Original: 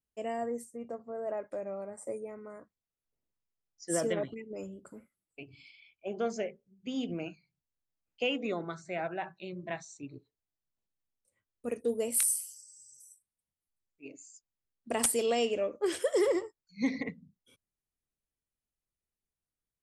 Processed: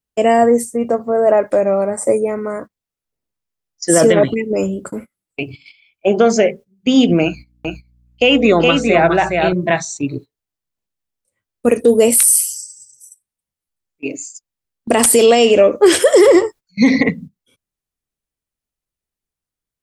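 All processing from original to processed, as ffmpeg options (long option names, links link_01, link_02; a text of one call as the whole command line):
ffmpeg -i in.wav -filter_complex "[0:a]asettb=1/sr,asplit=3[link_01][link_02][link_03];[link_01]atrim=end=7.234[link_04];[link_02]atrim=start=7.23:end=9.53,asetpts=PTS-STARTPTS,afade=type=in:duration=0.004:curve=qsin,afade=type=out:start_time=2.296:duration=0.004:curve=qsin,aeval=exprs='val(0)+0.000891*(sin(2*PI*60*n/s)+sin(2*PI*2*60*n/s)/2+sin(2*PI*3*60*n/s)/3+sin(2*PI*4*60*n/s)/4+sin(2*PI*5*60*n/s)/5)':channel_layout=same,aecho=1:1:415:0.562,atrim=end_sample=101430[link_05];[link_03]atrim=start=9.526[link_06];[link_04][link_05]acrossfade=duration=0.004:curve1=hsin:curve2=qsin[link_07];[link_07][link_06]acrossfade=duration=0.004:curve1=qsin:curve2=hsin,agate=range=-18dB:threshold=-53dB:ratio=16:detection=peak,alimiter=level_in=24.5dB:limit=-1dB:release=50:level=0:latency=1,volume=-1dB" out.wav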